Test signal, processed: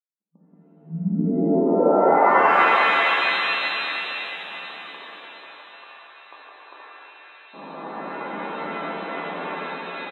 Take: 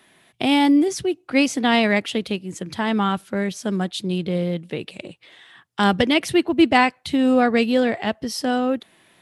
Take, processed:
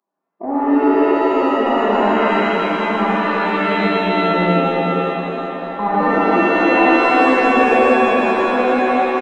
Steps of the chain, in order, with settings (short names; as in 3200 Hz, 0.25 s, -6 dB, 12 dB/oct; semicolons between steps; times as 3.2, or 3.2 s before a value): regenerating reverse delay 0.178 s, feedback 45%, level -3 dB; FFT band-pass 160–1200 Hz; spectral noise reduction 26 dB; tilt +2.5 dB/oct; in parallel at +2 dB: compressor, threshold -35 dBFS; on the sum: soft clip -9.5 dBFS; on a send: feedback echo 1.126 s, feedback 48%, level -24 dB; on the sum: shimmer reverb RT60 3.5 s, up +7 st, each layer -2 dB, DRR -6.5 dB; gain -4 dB